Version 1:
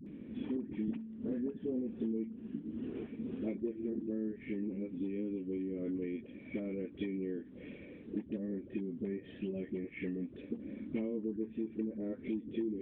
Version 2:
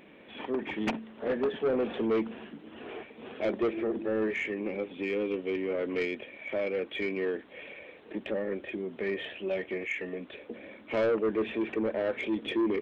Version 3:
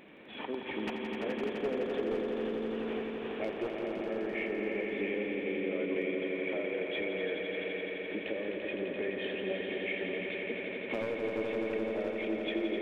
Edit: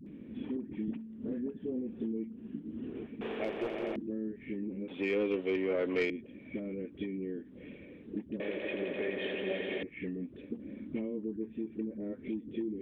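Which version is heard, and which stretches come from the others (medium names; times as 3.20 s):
1
3.21–3.96 s: from 3
4.88–6.10 s: from 2
8.40–9.83 s: from 3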